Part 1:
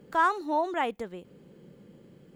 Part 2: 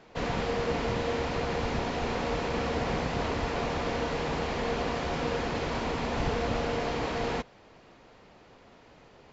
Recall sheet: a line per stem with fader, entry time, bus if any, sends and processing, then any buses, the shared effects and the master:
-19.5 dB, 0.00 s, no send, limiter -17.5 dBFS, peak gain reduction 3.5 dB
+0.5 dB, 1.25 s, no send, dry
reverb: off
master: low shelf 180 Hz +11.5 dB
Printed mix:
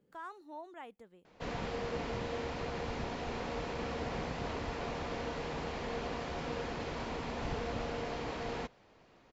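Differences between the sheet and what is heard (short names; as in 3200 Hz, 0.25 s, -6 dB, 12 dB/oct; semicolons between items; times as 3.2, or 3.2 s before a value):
stem 2 +0.5 dB -> -8.0 dB; master: missing low shelf 180 Hz +11.5 dB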